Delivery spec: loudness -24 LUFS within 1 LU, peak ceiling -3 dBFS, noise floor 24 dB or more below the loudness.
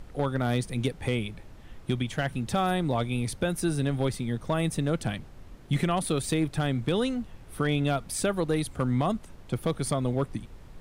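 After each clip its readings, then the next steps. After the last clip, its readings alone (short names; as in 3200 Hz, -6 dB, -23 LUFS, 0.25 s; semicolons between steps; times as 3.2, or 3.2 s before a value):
clipped 0.3%; flat tops at -16.5 dBFS; noise floor -48 dBFS; noise floor target -53 dBFS; loudness -29.0 LUFS; peak -16.5 dBFS; loudness target -24.0 LUFS
-> clip repair -16.5 dBFS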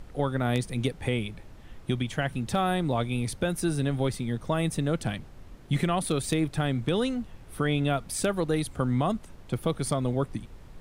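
clipped 0.0%; noise floor -48 dBFS; noise floor target -53 dBFS
-> noise print and reduce 6 dB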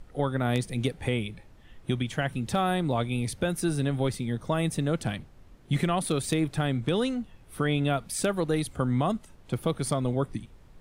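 noise floor -54 dBFS; loudness -29.0 LUFS; peak -10.0 dBFS; loudness target -24.0 LUFS
-> gain +5 dB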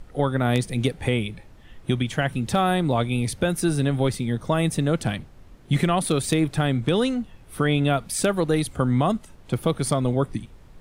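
loudness -23.5 LUFS; peak -5.0 dBFS; noise floor -49 dBFS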